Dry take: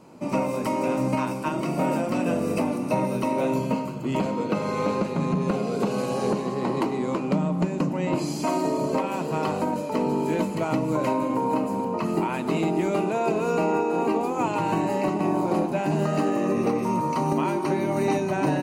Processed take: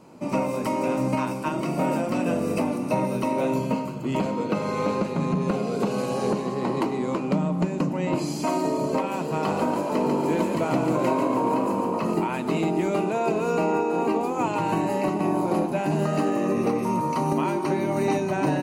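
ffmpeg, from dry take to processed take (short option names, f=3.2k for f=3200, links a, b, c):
-filter_complex "[0:a]asettb=1/sr,asplit=3[a][b][c];[a]atrim=end=9.294[d];[b]atrim=start=9.29:end=12.14,asetpts=PTS-STARTPTS,afade=t=in:d=0.004:c=qsin,afade=t=out:st=2.846:d=0.004:c=qsin,asplit=8[e][f][g][h][i][j][k][l];[f]adelay=142,afreqshift=45,volume=-5.5dB[m];[g]adelay=284,afreqshift=90,volume=-10.7dB[n];[h]adelay=426,afreqshift=135,volume=-15.9dB[o];[i]adelay=568,afreqshift=180,volume=-21.1dB[p];[j]adelay=710,afreqshift=225,volume=-26.3dB[q];[k]adelay=852,afreqshift=270,volume=-31.5dB[r];[l]adelay=994,afreqshift=315,volume=-36.7dB[s];[e][m][n][o][p][q][r][s]amix=inputs=8:normalize=0,atrim=end_sample=125685[t];[c]atrim=start=12.136[u];[d][t]acrossfade=d=0.004:c1=hsin:c2=qsin[v];[v][u]acrossfade=d=0.004:c1=qsin:c2=hsin,asettb=1/sr,asplit=3[w][x][y];[w]atrim=end=14.694[z];[x]atrim=start=14.69:end=17.45,asetpts=PTS-STARTPTS,afade=t=in:d=0.004:c=qsin,afade=t=out:st=2.756:d=0.004:c=qsin,equalizer=f=11k:w=7.9:g=9.5[aa];[y]atrim=start=17.446[ab];[z][aa]acrossfade=d=0.004:c1=hsin:c2=qsin[ac];[ac][ab]acrossfade=d=0.004:c1=qsin:c2=hsin"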